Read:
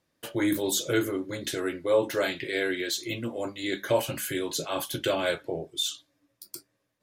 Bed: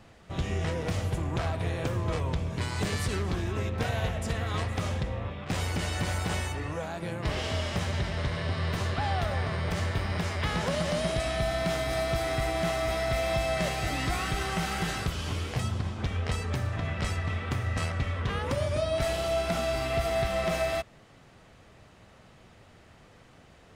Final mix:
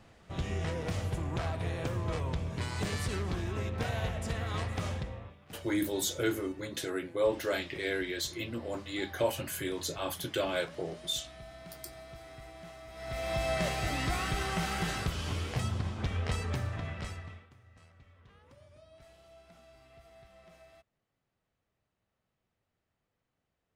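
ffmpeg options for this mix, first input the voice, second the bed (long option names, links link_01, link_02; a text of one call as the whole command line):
ffmpeg -i stem1.wav -i stem2.wav -filter_complex "[0:a]adelay=5300,volume=-5dB[link_01];[1:a]volume=13.5dB,afade=type=out:start_time=4.88:duration=0.5:silence=0.158489,afade=type=in:start_time=12.93:duration=0.57:silence=0.133352,afade=type=out:start_time=16.47:duration=1.02:silence=0.0473151[link_02];[link_01][link_02]amix=inputs=2:normalize=0" out.wav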